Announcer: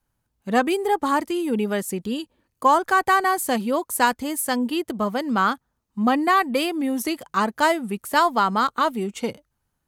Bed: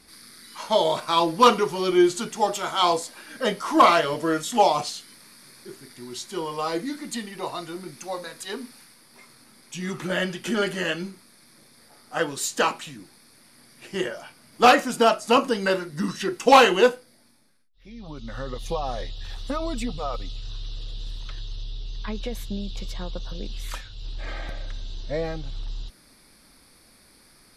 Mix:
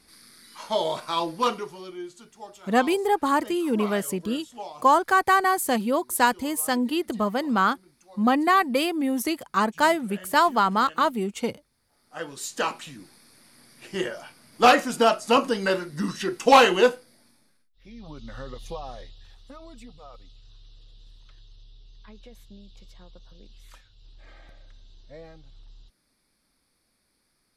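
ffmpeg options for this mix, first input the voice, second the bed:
-filter_complex "[0:a]adelay=2200,volume=-1dB[a];[1:a]volume=14dB,afade=t=out:st=1.06:d=0.91:silence=0.177828,afade=t=in:st=11.85:d=1.24:silence=0.11885,afade=t=out:st=17.69:d=1.68:silence=0.16788[b];[a][b]amix=inputs=2:normalize=0"

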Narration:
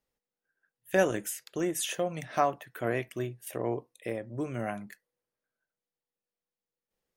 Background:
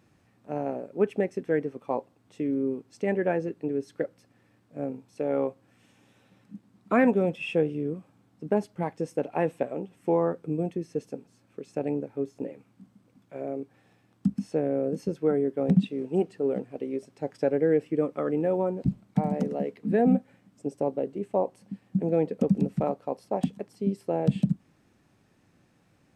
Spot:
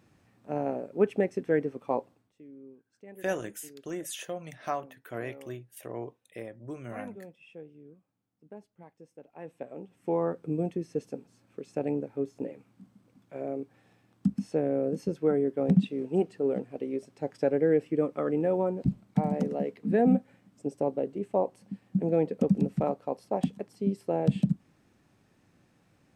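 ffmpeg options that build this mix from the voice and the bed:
-filter_complex "[0:a]adelay=2300,volume=-6dB[a];[1:a]volume=20.5dB,afade=t=out:st=2.09:d=0.23:silence=0.0841395,afade=t=in:st=9.35:d=1.21:silence=0.0944061[b];[a][b]amix=inputs=2:normalize=0"

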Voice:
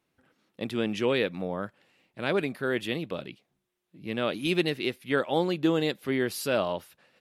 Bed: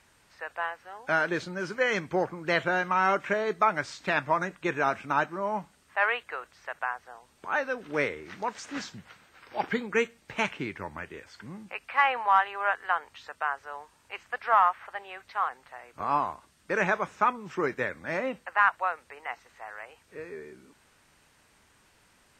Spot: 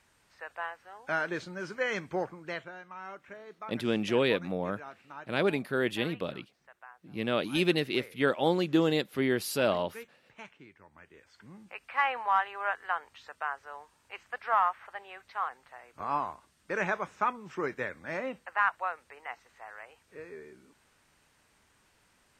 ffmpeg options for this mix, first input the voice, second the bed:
-filter_complex "[0:a]adelay=3100,volume=-0.5dB[a];[1:a]volume=10dB,afade=t=out:st=2.2:d=0.52:silence=0.188365,afade=t=in:st=10.89:d=1.1:silence=0.177828[b];[a][b]amix=inputs=2:normalize=0"

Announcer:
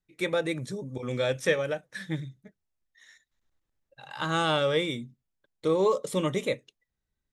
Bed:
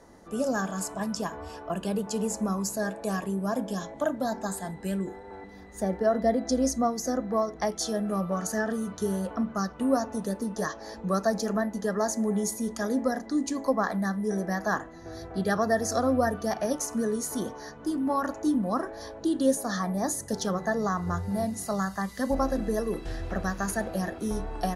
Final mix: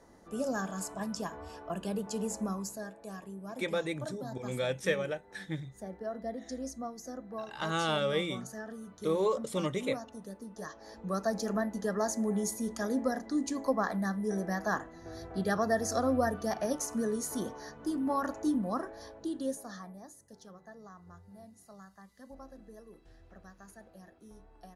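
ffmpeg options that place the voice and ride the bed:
-filter_complex "[0:a]adelay=3400,volume=-5dB[a];[1:a]volume=4.5dB,afade=t=out:st=2.43:d=0.48:silence=0.375837,afade=t=in:st=10.52:d=1.03:silence=0.316228,afade=t=out:st=18.43:d=1.65:silence=0.105925[b];[a][b]amix=inputs=2:normalize=0"

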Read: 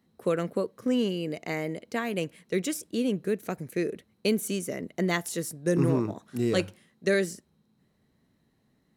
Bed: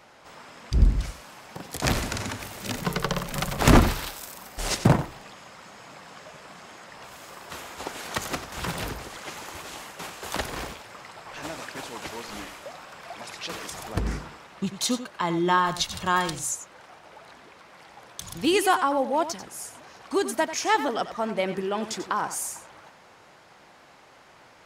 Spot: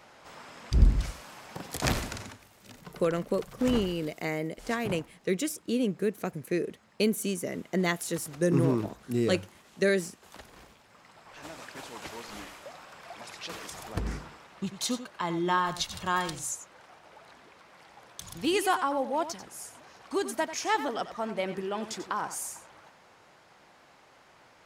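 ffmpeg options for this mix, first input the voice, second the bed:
-filter_complex "[0:a]adelay=2750,volume=-0.5dB[a];[1:a]volume=12.5dB,afade=t=out:st=1.75:d=0.66:silence=0.133352,afade=t=in:st=10.68:d=1.33:silence=0.199526[b];[a][b]amix=inputs=2:normalize=0"

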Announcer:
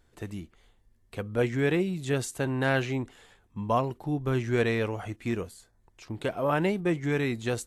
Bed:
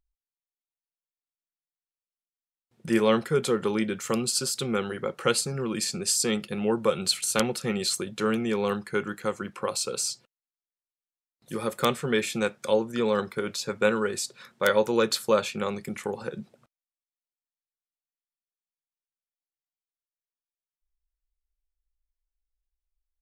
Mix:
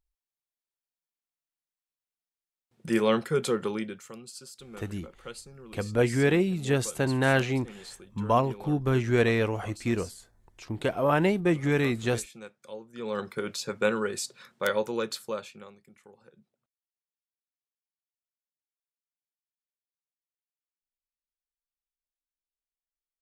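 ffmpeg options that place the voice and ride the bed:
-filter_complex "[0:a]adelay=4600,volume=2.5dB[a];[1:a]volume=13.5dB,afade=t=out:st=3.54:d=0.58:silence=0.158489,afade=t=in:st=12.91:d=0.43:silence=0.16788,afade=t=out:st=14.35:d=1.41:silence=0.0944061[b];[a][b]amix=inputs=2:normalize=0"

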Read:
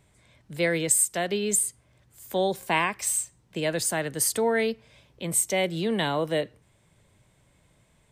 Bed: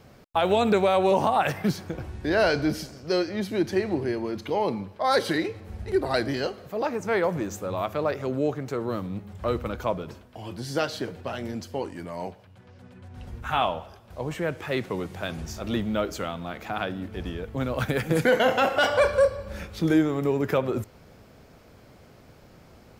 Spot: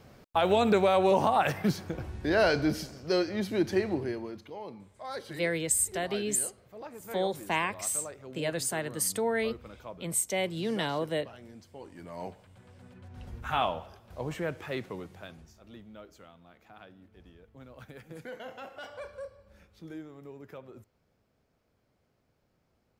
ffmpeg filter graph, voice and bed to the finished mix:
-filter_complex "[0:a]adelay=4800,volume=-5dB[a];[1:a]volume=10dB,afade=t=out:st=3.8:d=0.71:silence=0.199526,afade=t=in:st=11.79:d=0.55:silence=0.237137,afade=t=out:st=14.3:d=1.23:silence=0.125893[b];[a][b]amix=inputs=2:normalize=0"

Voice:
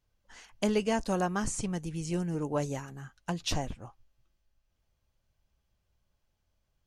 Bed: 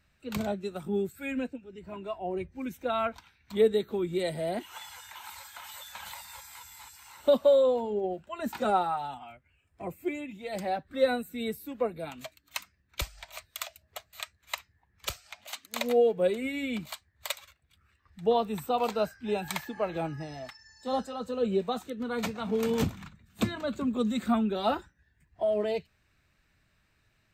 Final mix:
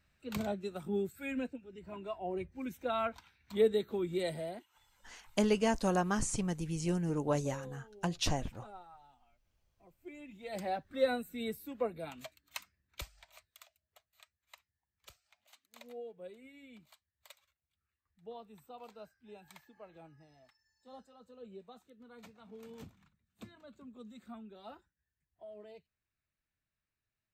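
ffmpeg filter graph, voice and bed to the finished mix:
-filter_complex "[0:a]adelay=4750,volume=-1dB[a];[1:a]volume=16dB,afade=t=out:st=4.32:d=0.34:silence=0.0891251,afade=t=in:st=9.98:d=0.6:silence=0.0944061,afade=t=out:st=12.17:d=1.49:silence=0.133352[b];[a][b]amix=inputs=2:normalize=0"

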